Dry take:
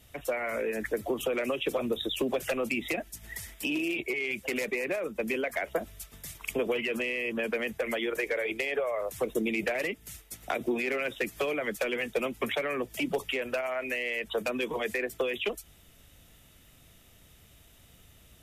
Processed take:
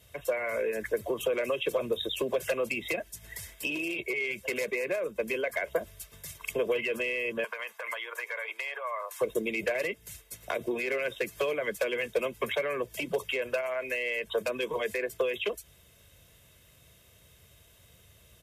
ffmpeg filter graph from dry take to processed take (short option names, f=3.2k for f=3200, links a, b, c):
-filter_complex "[0:a]asettb=1/sr,asplit=3[a][b][c];[a]atrim=end=7.444[d];[b]atrim=start=7.44:end=9.21,asetpts=PTS-STARTPTS,afade=t=in:d=0.004:c=qsin,afade=t=out:st=1.766:d=0.004:c=qsin,acompressor=threshold=-32dB:ratio=3:attack=3.2:release=140:knee=1:detection=peak,highpass=f=1k:t=q:w=2.8[e];[c]atrim=start=9.206[f];[d][e]acrossfade=d=0.004:c1=hsin:c2=qsin[g];[g][f]acrossfade=d=0.004:c1=qsin:c2=hsin,highpass=68,aecho=1:1:1.9:0.55,volume=-1.5dB"